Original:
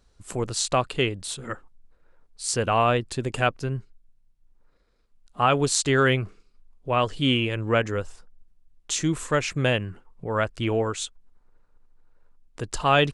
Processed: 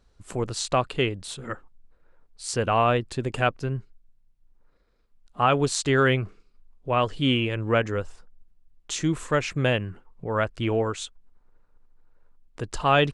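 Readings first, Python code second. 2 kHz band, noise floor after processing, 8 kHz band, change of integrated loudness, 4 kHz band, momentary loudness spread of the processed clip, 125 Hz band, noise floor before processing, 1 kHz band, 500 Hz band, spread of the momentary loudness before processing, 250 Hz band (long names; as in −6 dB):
−1.0 dB, −63 dBFS, −5.0 dB, −0.5 dB, −2.0 dB, 16 LU, 0.0 dB, −63 dBFS, −0.5 dB, 0.0 dB, 14 LU, 0.0 dB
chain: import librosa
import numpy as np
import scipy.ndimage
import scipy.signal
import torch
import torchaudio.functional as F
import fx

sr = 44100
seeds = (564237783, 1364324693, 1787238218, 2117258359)

y = fx.high_shelf(x, sr, hz=5300.0, db=-7.5)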